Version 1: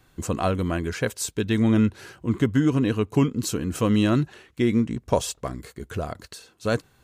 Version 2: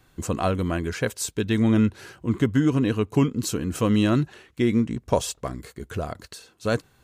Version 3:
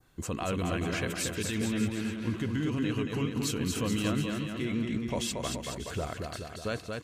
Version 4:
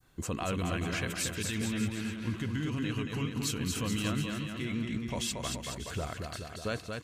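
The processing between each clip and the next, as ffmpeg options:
ffmpeg -i in.wav -af anull out.wav
ffmpeg -i in.wav -filter_complex "[0:a]adynamicequalizer=threshold=0.00501:dfrequency=2700:dqfactor=1.1:tfrequency=2700:tqfactor=1.1:attack=5:release=100:ratio=0.375:range=4:mode=boostabove:tftype=bell,alimiter=limit=-17.5dB:level=0:latency=1:release=32,asplit=2[link_01][link_02];[link_02]aecho=0:1:230|425.5|591.7|732.9|853:0.631|0.398|0.251|0.158|0.1[link_03];[link_01][link_03]amix=inputs=2:normalize=0,volume=-5.5dB" out.wav
ffmpeg -i in.wav -af "adynamicequalizer=threshold=0.00631:dfrequency=430:dqfactor=0.72:tfrequency=430:tqfactor=0.72:attack=5:release=100:ratio=0.375:range=3:mode=cutabove:tftype=bell" out.wav

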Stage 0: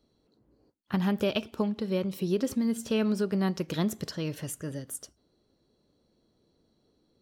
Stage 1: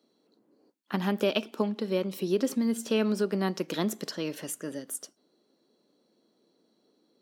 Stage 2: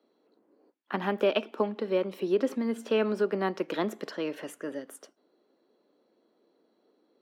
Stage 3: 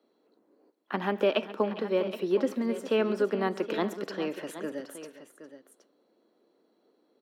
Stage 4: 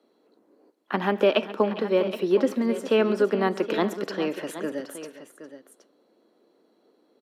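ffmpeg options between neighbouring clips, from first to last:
ffmpeg -i in.wav -af "highpass=frequency=210:width=0.5412,highpass=frequency=210:width=1.3066,volume=2dB" out.wav
ffmpeg -i in.wav -filter_complex "[0:a]acrossover=split=270 2900:gain=0.2 1 0.158[link_01][link_02][link_03];[link_01][link_02][link_03]amix=inputs=3:normalize=0,volume=3dB" out.wav
ffmpeg -i in.wav -af "aecho=1:1:137|407|771:0.112|0.158|0.237" out.wav
ffmpeg -i in.wav -af "aresample=32000,aresample=44100,volume=5dB" out.wav

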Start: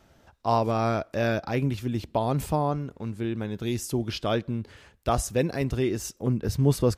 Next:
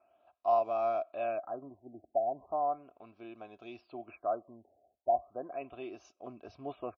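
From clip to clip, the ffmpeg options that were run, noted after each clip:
ffmpeg -i in.wav -filter_complex "[0:a]asplit=3[link_01][link_02][link_03];[link_01]bandpass=frequency=730:width_type=q:width=8,volume=0dB[link_04];[link_02]bandpass=frequency=1090:width_type=q:width=8,volume=-6dB[link_05];[link_03]bandpass=frequency=2440:width_type=q:width=8,volume=-9dB[link_06];[link_04][link_05][link_06]amix=inputs=3:normalize=0,aecho=1:1:3.1:0.51,afftfilt=real='re*lt(b*sr/1024,810*pow(7600/810,0.5+0.5*sin(2*PI*0.36*pts/sr)))':imag='im*lt(b*sr/1024,810*pow(7600/810,0.5+0.5*sin(2*PI*0.36*pts/sr)))':win_size=1024:overlap=0.75" out.wav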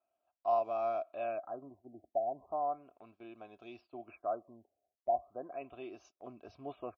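ffmpeg -i in.wav -af "agate=range=-13dB:threshold=-58dB:ratio=16:detection=peak,volume=-3dB" out.wav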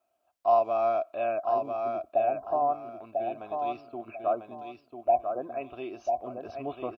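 ffmpeg -i in.wav -af "aecho=1:1:995|1990|2985:0.562|0.146|0.038,volume=8dB" out.wav

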